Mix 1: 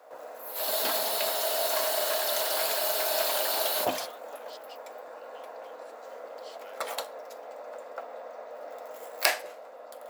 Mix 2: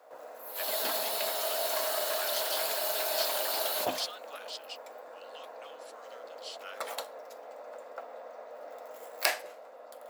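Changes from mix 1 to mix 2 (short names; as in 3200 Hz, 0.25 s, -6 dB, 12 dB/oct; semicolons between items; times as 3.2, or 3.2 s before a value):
speech +8.5 dB; background -3.5 dB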